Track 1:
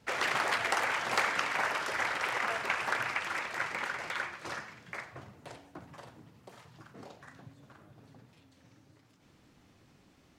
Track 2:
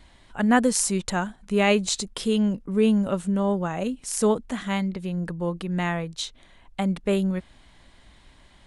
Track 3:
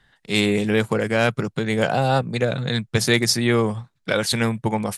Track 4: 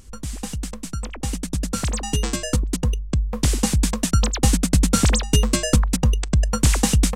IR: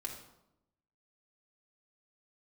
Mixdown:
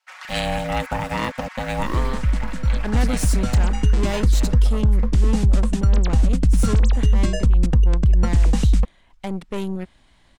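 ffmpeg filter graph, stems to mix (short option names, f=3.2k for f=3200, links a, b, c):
-filter_complex "[0:a]highpass=f=840:w=0.5412,highpass=f=840:w=1.3066,aecho=1:1:5.4:0.71,volume=-8dB[a];[1:a]aeval=exprs='(tanh(17.8*val(0)+0.8)-tanh(0.8))/17.8':c=same,adelay=2450,volume=2dB[b];[2:a]aeval=exprs='val(0)*gte(abs(val(0)),0.0188)':c=same,aeval=exprs='val(0)*sin(2*PI*380*n/s)':c=same,volume=-0.5dB,afade=t=out:st=1.86:d=0.33:silence=0.251189[c];[3:a]aemphasis=mode=reproduction:type=bsi,adelay=1700,volume=-3dB[d];[a][b][c][d]amix=inputs=4:normalize=0,alimiter=limit=-9dB:level=0:latency=1:release=71"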